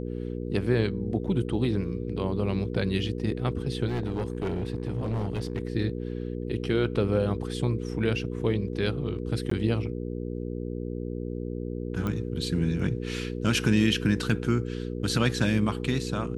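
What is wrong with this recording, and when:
mains hum 60 Hz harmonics 8 −33 dBFS
0:03.87–0:05.63: clipping −24.5 dBFS
0:09.50–0:09.51: drop-out 14 ms
0:12.07: click −19 dBFS

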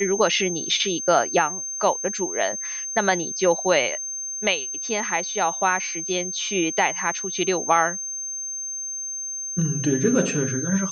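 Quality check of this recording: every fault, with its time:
whistle 6,300 Hz −28 dBFS

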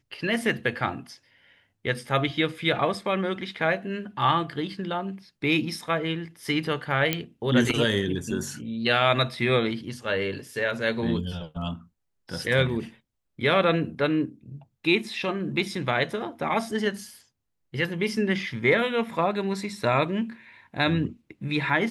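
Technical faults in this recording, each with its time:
0:07.13: click −8 dBFS

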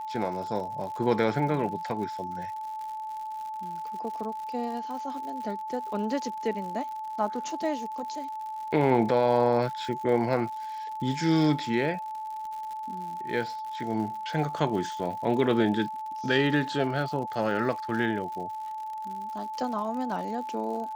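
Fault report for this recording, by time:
surface crackle 110 per second −37 dBFS
whistle 870 Hz −33 dBFS

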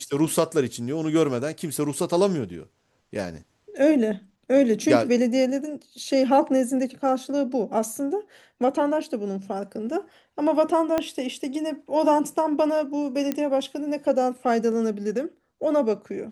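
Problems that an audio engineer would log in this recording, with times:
0:10.98: click −11 dBFS
0:13.32: click −12 dBFS

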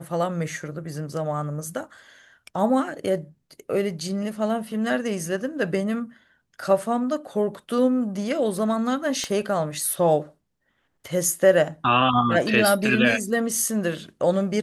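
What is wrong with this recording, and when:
0:09.24: click −15 dBFS

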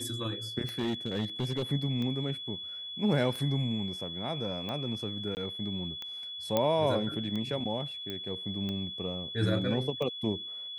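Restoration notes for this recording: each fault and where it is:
scratch tick 45 rpm −24 dBFS
whistle 3,400 Hz −38 dBFS
0:00.79–0:01.63: clipping −26.5 dBFS
0:05.35–0:05.37: drop-out 19 ms
0:06.57: click −13 dBFS
0:08.10: click −23 dBFS

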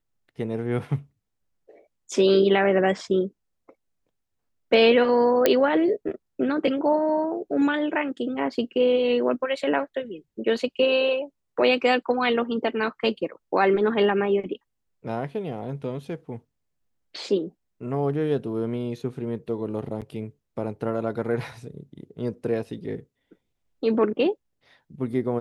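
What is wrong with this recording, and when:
0:05.46: click −4 dBFS
0:20.01–0:20.02: drop-out 7.6 ms

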